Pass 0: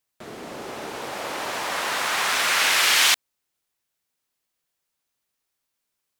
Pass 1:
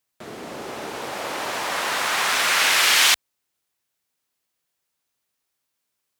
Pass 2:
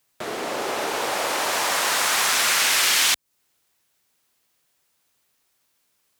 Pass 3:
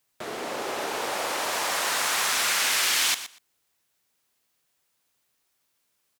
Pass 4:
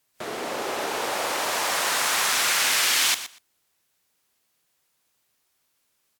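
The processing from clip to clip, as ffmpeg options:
ffmpeg -i in.wav -af "highpass=45,volume=1.5dB" out.wav
ffmpeg -i in.wav -filter_complex "[0:a]acrossover=split=340|4900[link_01][link_02][link_03];[link_01]acompressor=threshold=-55dB:ratio=4[link_04];[link_02]acompressor=threshold=-32dB:ratio=4[link_05];[link_03]acompressor=threshold=-31dB:ratio=4[link_06];[link_04][link_05][link_06]amix=inputs=3:normalize=0,volume=9dB" out.wav
ffmpeg -i in.wav -af "aecho=1:1:120|240:0.224|0.0336,volume=-4.5dB" out.wav
ffmpeg -i in.wav -af "volume=2dB" -ar 44100 -c:a wmav2 -b:a 128k out.wma

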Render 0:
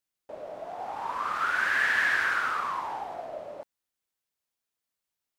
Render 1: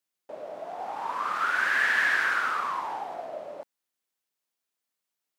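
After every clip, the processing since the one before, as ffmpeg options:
ffmpeg -i in.wav -af "highpass=160,volume=1dB" out.wav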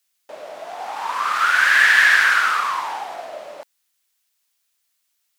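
ffmpeg -i in.wav -af "aeval=exprs='0.251*(cos(1*acos(clip(val(0)/0.251,-1,1)))-cos(1*PI/2))+0.0158*(cos(2*acos(clip(val(0)/0.251,-1,1)))-cos(2*PI/2))':channel_layout=same,tiltshelf=frequency=970:gain=-8.5,volume=6.5dB" out.wav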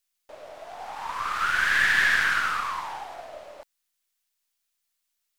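ffmpeg -i in.wav -af "aeval=exprs='if(lt(val(0),0),0.708*val(0),val(0))':channel_layout=same,volume=-6.5dB" out.wav

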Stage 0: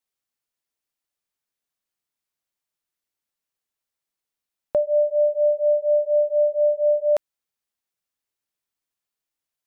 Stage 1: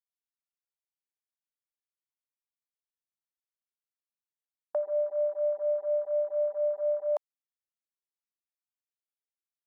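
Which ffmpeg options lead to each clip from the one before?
ffmpeg -i in.wav -af "highpass=frequency=700:width=0.5412,highpass=frequency=700:width=1.3066,afwtdn=0.0158,volume=-2.5dB" out.wav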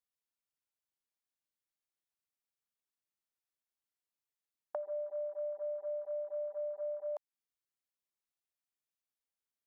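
ffmpeg -i in.wav -af "acompressor=threshold=-36dB:ratio=6,volume=-1dB" out.wav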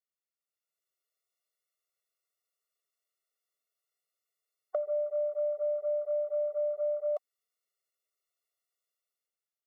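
ffmpeg -i in.wav -af "dynaudnorm=framelen=150:gausssize=9:maxgain=10dB,afftfilt=real='re*eq(mod(floor(b*sr/1024/370),2),1)':imag='im*eq(mod(floor(b*sr/1024/370),2),1)':win_size=1024:overlap=0.75,volume=-2.5dB" out.wav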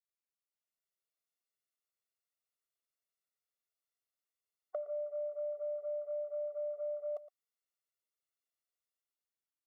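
ffmpeg -i in.wav -af "aecho=1:1:115:0.15,volume=-7.5dB" out.wav

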